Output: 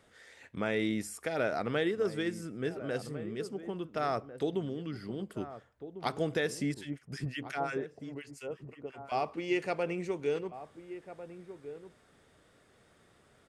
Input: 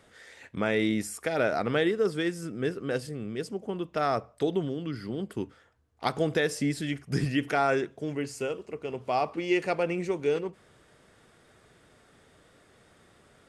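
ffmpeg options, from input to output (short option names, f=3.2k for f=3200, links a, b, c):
-filter_complex "[0:a]asettb=1/sr,asplit=3[a][b][c];[a]atrim=end=6.744[d];[b]atrim=start=6.74:end=9.12,asetpts=PTS-STARTPTS,afade=t=in:d=0.004:c=qsin,afade=t=out:st=2.376:d=0.004:c=qsin,acrossover=split=1200[e][f];[e]aeval=exprs='val(0)*(1-1/2+1/2*cos(2*PI*5.7*n/s))':c=same[g];[f]aeval=exprs='val(0)*(1-1/2-1/2*cos(2*PI*5.7*n/s))':c=same[h];[g][h]amix=inputs=2:normalize=0[i];[c]atrim=start=9.116[j];[d][i]acrossfade=d=0.004:c1=hsin:c2=qsin[k];[k][j]acrossfade=d=0.004:c1=qsin:c2=hsin,asplit=2[l][m];[m]adelay=1399,volume=-12dB,highshelf=f=4k:g=-31.5[n];[l][n]amix=inputs=2:normalize=0,volume=-5dB"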